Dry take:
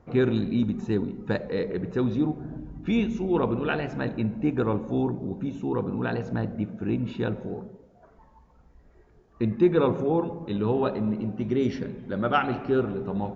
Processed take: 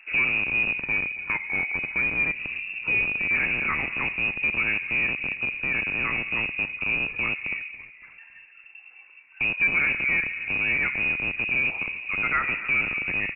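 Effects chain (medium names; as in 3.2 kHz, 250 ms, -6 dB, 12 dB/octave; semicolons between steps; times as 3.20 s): rattle on loud lows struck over -30 dBFS, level -22 dBFS; 0.81–2.35 s: steep high-pass 170 Hz 48 dB/octave; in parallel at -2.5 dB: compression, threshold -35 dBFS, peak gain reduction 19 dB; on the sum: saturation -16.5 dBFS, distortion -16 dB; on a send: frequency-shifting echo 279 ms, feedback 49%, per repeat +59 Hz, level -18 dB; on the sum: frequency inversion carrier 2.7 kHz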